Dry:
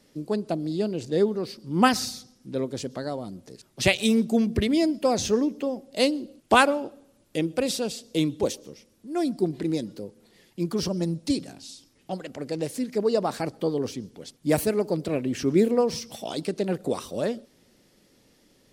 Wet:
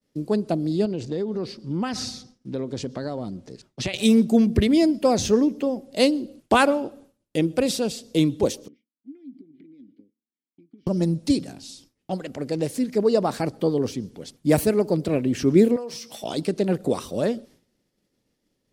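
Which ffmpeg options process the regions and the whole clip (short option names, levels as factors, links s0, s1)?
-filter_complex "[0:a]asettb=1/sr,asplit=3[s0][s1][s2];[s0]atrim=end=0.854[s3];[s1]atrim=start=0.85:end=3.94,asetpts=PTS-STARTPTS,afade=t=in:d=0.004:c=qsin,afade=t=out:st=3.086:d=0.004:c=qsin,lowpass=6700,acompressor=threshold=0.0447:ratio=6:attack=3.2:release=140:knee=1:detection=peak[s4];[s2]atrim=start=3.936[s5];[s3][s4]acrossfade=d=0.004:c1=hsin:c2=qsin[s6];[s6][s5]acrossfade=d=0.004:c1=qsin:c2=hsin,asettb=1/sr,asplit=3[s7][s8][s9];[s7]atrim=end=8.684[s10];[s8]atrim=start=8.68:end=10.87,asetpts=PTS-STARTPTS,afade=t=in:d=0.004:c=qsin,afade=t=out:st=2.186:d=0.004:c=qsin,highshelf=f=4100:g=-11.5,acompressor=threshold=0.0141:ratio=20:attack=3.2:release=140:knee=1:detection=peak,asplit=3[s11][s12][s13];[s11]bandpass=f=270:t=q:w=8,volume=1[s14];[s12]bandpass=f=2290:t=q:w=8,volume=0.501[s15];[s13]bandpass=f=3010:t=q:w=8,volume=0.355[s16];[s14][s15][s16]amix=inputs=3:normalize=0[s17];[s9]atrim=start=10.866[s18];[s10][s17]acrossfade=d=0.004:c1=hsin:c2=qsin[s19];[s19][s18]acrossfade=d=0.004:c1=qsin:c2=hsin,asettb=1/sr,asplit=3[s20][s21][s22];[s20]atrim=end=15.764[s23];[s21]atrim=start=15.76:end=16.24,asetpts=PTS-STARTPTS,afade=t=in:d=0.004:c=qsin,afade=t=out:st=0.476:d=0.004:c=qsin,highpass=f=620:p=1,asplit=2[s24][s25];[s25]adelay=17,volume=0.282[s26];[s24][s26]amix=inputs=2:normalize=0,atrim=end_sample=21168,acompressor=threshold=0.02:ratio=4:attack=3.2:release=140:knee=1:detection=peak[s27];[s22]atrim=start=16.236[s28];[s23][s27]acrossfade=d=0.004:c1=hsin:c2=qsin[s29];[s29][s28]acrossfade=d=0.004:c1=qsin:c2=hsin,agate=range=0.0224:threshold=0.00355:ratio=3:detection=peak,lowshelf=f=400:g=4.5,alimiter=level_in=2:limit=0.891:release=50:level=0:latency=1,volume=0.596"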